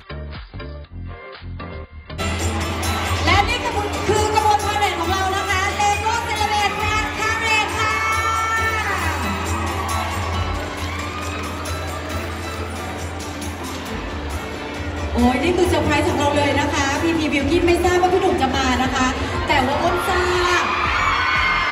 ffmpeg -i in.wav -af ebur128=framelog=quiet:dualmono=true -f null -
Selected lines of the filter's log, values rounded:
Integrated loudness:
  I:         -16.5 LUFS
  Threshold: -26.8 LUFS
Loudness range:
  LRA:         8.7 LU
  Threshold: -36.8 LUFS
  LRA low:   -23.4 LUFS
  LRA high:  -14.6 LUFS